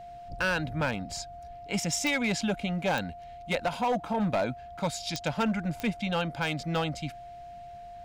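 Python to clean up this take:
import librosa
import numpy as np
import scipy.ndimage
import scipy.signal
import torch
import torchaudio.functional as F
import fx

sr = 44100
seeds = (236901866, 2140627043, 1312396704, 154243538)

y = fx.fix_declip(x, sr, threshold_db=-22.0)
y = fx.fix_declick_ar(y, sr, threshold=10.0)
y = fx.notch(y, sr, hz=700.0, q=30.0)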